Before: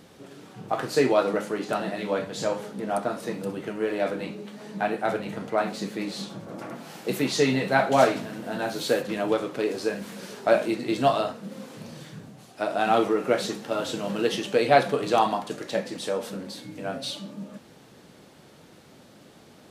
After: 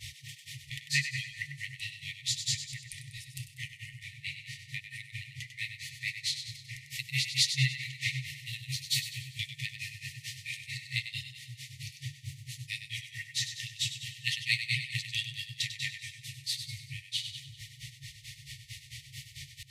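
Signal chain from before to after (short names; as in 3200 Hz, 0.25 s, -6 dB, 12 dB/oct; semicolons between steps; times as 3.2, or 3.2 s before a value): grains 0.151 s, grains 4.5/s, pitch spread up and down by 0 st; split-band echo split 300 Hz, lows 0.547 s, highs 97 ms, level -9.5 dB; in parallel at +2 dB: upward compressor, threshold -28 dBFS; on the sum: FFT band-reject 150–1800 Hz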